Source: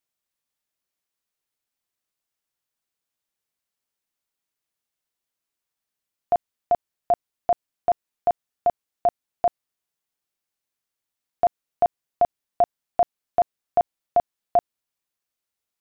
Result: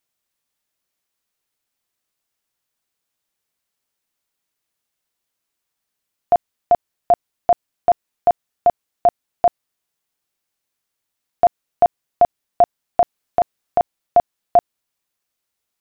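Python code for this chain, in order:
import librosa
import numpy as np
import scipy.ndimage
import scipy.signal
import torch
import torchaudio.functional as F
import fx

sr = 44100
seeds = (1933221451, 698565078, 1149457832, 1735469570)

y = fx.over_compress(x, sr, threshold_db=-19.0, ratio=-1.0, at=(13.0, 13.8), fade=0.02)
y = F.gain(torch.from_numpy(y), 6.0).numpy()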